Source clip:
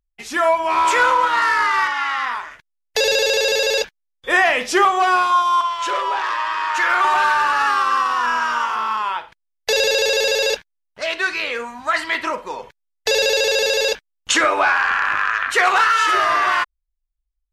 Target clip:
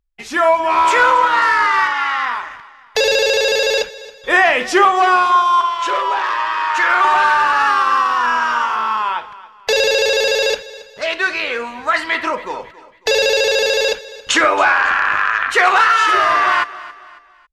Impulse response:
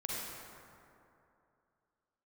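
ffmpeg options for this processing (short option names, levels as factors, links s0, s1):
-filter_complex "[0:a]highshelf=f=6300:g=-8,asplit=2[s0][s1];[s1]aecho=0:1:275|550|825:0.126|0.0491|0.0191[s2];[s0][s2]amix=inputs=2:normalize=0,volume=1.5"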